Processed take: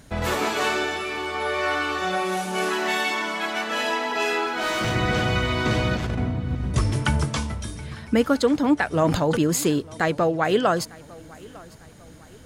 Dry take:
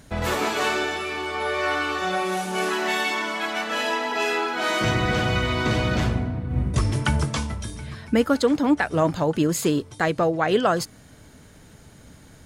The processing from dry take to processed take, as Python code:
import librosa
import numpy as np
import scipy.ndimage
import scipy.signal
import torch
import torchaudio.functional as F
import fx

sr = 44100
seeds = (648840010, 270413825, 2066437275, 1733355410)

y = fx.over_compress(x, sr, threshold_db=-24.0, ratio=-0.5, at=(5.95, 6.69))
y = fx.echo_feedback(y, sr, ms=901, feedback_pct=43, wet_db=-23)
y = fx.clip_hard(y, sr, threshold_db=-20.5, at=(4.46, 4.96))
y = fx.sustainer(y, sr, db_per_s=49.0, at=(9.04, 9.68))